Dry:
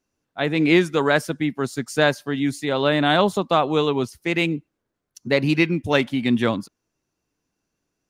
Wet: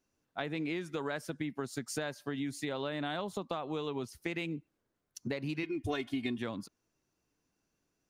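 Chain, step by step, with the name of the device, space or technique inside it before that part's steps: serial compression, peaks first (compression, threshold -26 dBFS, peak gain reduction 14 dB; compression 2:1, threshold -33 dBFS, peak gain reduction 6 dB); 5.63–6.38 s: comb 2.8 ms, depth 88%; trim -3 dB

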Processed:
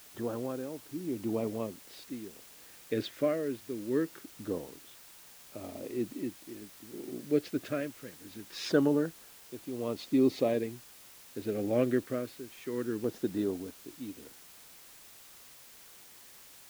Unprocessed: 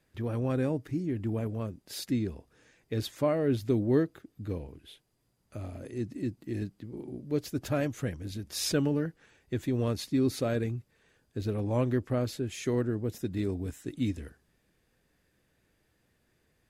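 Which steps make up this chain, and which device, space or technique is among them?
shortwave radio (band-pass 260–3000 Hz; tremolo 0.68 Hz, depth 78%; LFO notch saw down 0.23 Hz 640–2500 Hz; white noise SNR 19 dB); trim +4.5 dB

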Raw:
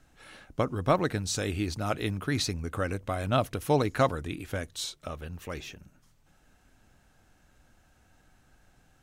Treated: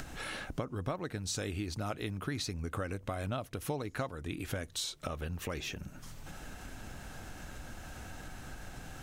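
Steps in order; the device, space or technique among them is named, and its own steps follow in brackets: upward and downward compression (upward compressor, threshold -33 dBFS; compression 8:1, threshold -35 dBFS, peak gain reduction 17 dB); trim +2 dB

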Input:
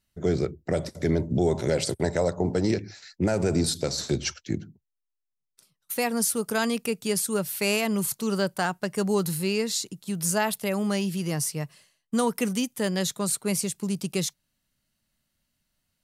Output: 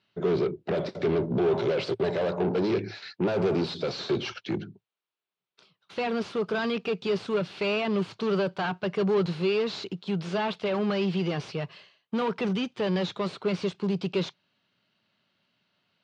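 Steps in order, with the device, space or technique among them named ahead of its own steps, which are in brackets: overdrive pedal into a guitar cabinet (overdrive pedal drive 26 dB, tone 7.7 kHz, clips at -13 dBFS; cabinet simulation 110–3800 Hz, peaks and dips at 110 Hz +9 dB, 180 Hz +6 dB, 390 Hz +7 dB, 1.9 kHz -6 dB); trim -8.5 dB

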